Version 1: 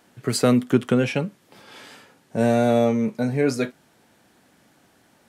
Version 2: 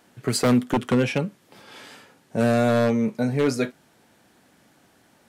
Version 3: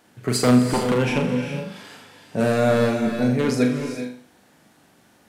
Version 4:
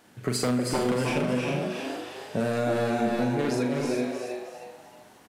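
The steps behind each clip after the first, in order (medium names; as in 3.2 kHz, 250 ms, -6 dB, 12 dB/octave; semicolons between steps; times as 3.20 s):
wavefolder -12.5 dBFS
on a send: flutter echo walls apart 6.9 m, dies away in 0.43 s; on the sum: gated-style reverb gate 440 ms rising, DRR 6 dB
compression, threshold -24 dBFS, peak gain reduction 12.5 dB; on a send: frequency-shifting echo 316 ms, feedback 37%, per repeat +120 Hz, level -5 dB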